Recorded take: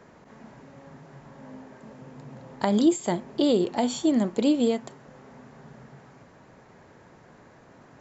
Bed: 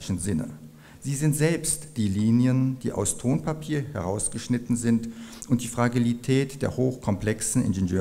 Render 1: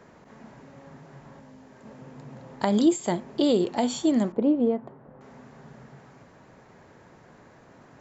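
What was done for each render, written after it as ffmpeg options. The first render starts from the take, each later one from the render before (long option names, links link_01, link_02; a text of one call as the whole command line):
ffmpeg -i in.wav -filter_complex "[0:a]asettb=1/sr,asplit=3[link_01][link_02][link_03];[link_01]atrim=end=1.394[link_04];[link_02]atrim=start=1.39:end=1.85,asetpts=PTS-STARTPTS,afade=type=in:duration=0.004:curve=qsin,afade=type=out:start_time=0.456:duration=0.004:curve=qsin,acrossover=split=130|3000[link_05][link_06][link_07];[link_06]acompressor=threshold=-47dB:ratio=6:attack=3.2:release=140:knee=2.83:detection=peak[link_08];[link_05][link_08][link_07]amix=inputs=3:normalize=0[link_09];[link_03]atrim=start=1.846[link_10];[link_04][link_09]acrossfade=duration=0.004:curve1=hsin:curve2=qsin[link_11];[link_11][link_10]acrossfade=duration=0.004:curve1=qsin:curve2=hsin,asettb=1/sr,asplit=3[link_12][link_13][link_14];[link_12]atrim=end=4.324[link_15];[link_13]atrim=start=4.32:end=5.21,asetpts=PTS-STARTPTS,afade=type=in:duration=0.004:curve=qsin,afade=type=out:start_time=0.886:duration=0.004:curve=qsin,lowpass=1100[link_16];[link_14]atrim=start=5.206[link_17];[link_15][link_16]acrossfade=duration=0.004:curve1=hsin:curve2=qsin[link_18];[link_18][link_17]acrossfade=duration=0.004:curve1=qsin:curve2=hsin" out.wav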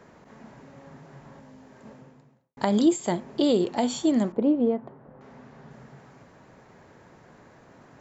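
ffmpeg -i in.wav -filter_complex "[0:a]asettb=1/sr,asplit=3[link_01][link_02][link_03];[link_01]atrim=end=4.594[link_04];[link_02]atrim=start=4.59:end=5.71,asetpts=PTS-STARTPTS,afade=type=in:duration=0.004:curve=qsin,afade=type=out:start_time=1.116:duration=0.004:curve=qsin,lowpass=5800[link_05];[link_03]atrim=start=5.706[link_06];[link_04][link_05]acrossfade=duration=0.004:curve1=hsin:curve2=qsin[link_07];[link_07][link_06]acrossfade=duration=0.004:curve1=qsin:curve2=hsin,asplit=2[link_08][link_09];[link_08]atrim=end=2.57,asetpts=PTS-STARTPTS,afade=type=out:start_time=1.88:duration=0.69:curve=qua[link_10];[link_09]atrim=start=2.57,asetpts=PTS-STARTPTS,afade=type=in:duration=0.004:curve=hsin[link_11];[link_10][link_11]concat=n=2:v=0:a=1" out.wav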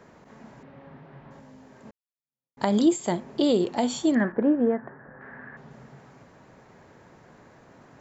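ffmpeg -i in.wav -filter_complex "[0:a]asettb=1/sr,asplit=3[link_01][link_02][link_03];[link_01]atrim=end=0.634[link_04];[link_02]atrim=start=0.63:end=1.31,asetpts=PTS-STARTPTS,afade=type=in:duration=0.004:curve=qsin,afade=type=out:start_time=0.676:duration=0.004:curve=qsin,lowpass=frequency=3600:width=0.5412,lowpass=frequency=3600:width=1.3066[link_05];[link_03]atrim=start=1.306[link_06];[link_04][link_05]acrossfade=duration=0.004:curve1=hsin:curve2=qsin[link_07];[link_07][link_06]acrossfade=duration=0.004:curve1=qsin:curve2=hsin,asettb=1/sr,asplit=3[link_08][link_09][link_10];[link_08]atrim=end=4.154[link_11];[link_09]atrim=start=4.15:end=5.57,asetpts=PTS-STARTPTS,afade=type=in:duration=0.004:curve=qsin,afade=type=out:start_time=1.416:duration=0.004:curve=qsin,lowpass=frequency=1700:width_type=q:width=12[link_12];[link_10]atrim=start=5.566[link_13];[link_11][link_12]acrossfade=duration=0.004:curve1=hsin:curve2=qsin[link_14];[link_14][link_13]acrossfade=duration=0.004:curve1=qsin:curve2=hsin,asplit=2[link_15][link_16];[link_15]atrim=end=1.91,asetpts=PTS-STARTPTS,afade=type=out:start_time=1.906:duration=0.004:curve=hsin[link_17];[link_16]atrim=start=1.91,asetpts=PTS-STARTPTS,afade=type=in:duration=0.71:curve=exp[link_18];[link_17][link_18]concat=n=2:v=0:a=1" out.wav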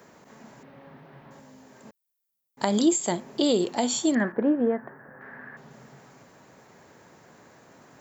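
ffmpeg -i in.wav -af "highpass=frequency=140:poles=1,aemphasis=mode=production:type=50fm" out.wav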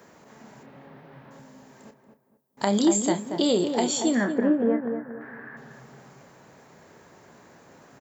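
ffmpeg -i in.wav -filter_complex "[0:a]asplit=2[link_01][link_02];[link_02]adelay=30,volume=-10dB[link_03];[link_01][link_03]amix=inputs=2:normalize=0,asplit=2[link_04][link_05];[link_05]adelay=232,lowpass=frequency=1300:poles=1,volume=-6dB,asplit=2[link_06][link_07];[link_07]adelay=232,lowpass=frequency=1300:poles=1,volume=0.35,asplit=2[link_08][link_09];[link_09]adelay=232,lowpass=frequency=1300:poles=1,volume=0.35,asplit=2[link_10][link_11];[link_11]adelay=232,lowpass=frequency=1300:poles=1,volume=0.35[link_12];[link_04][link_06][link_08][link_10][link_12]amix=inputs=5:normalize=0" out.wav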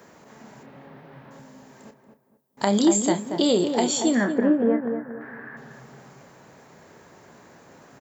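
ffmpeg -i in.wav -af "volume=2dB" out.wav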